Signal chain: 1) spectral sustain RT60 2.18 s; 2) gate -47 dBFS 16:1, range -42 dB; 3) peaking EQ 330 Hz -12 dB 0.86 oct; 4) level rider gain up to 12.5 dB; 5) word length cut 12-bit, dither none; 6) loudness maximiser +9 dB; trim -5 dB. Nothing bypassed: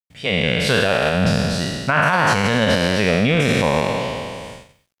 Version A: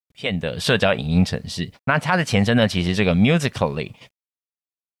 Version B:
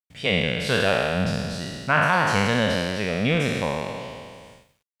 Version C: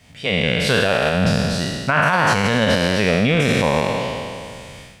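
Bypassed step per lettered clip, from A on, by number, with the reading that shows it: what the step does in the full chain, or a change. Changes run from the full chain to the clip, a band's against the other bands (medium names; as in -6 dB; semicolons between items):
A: 1, 250 Hz band +4.0 dB; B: 4, crest factor change +5.5 dB; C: 2, momentary loudness spread change +2 LU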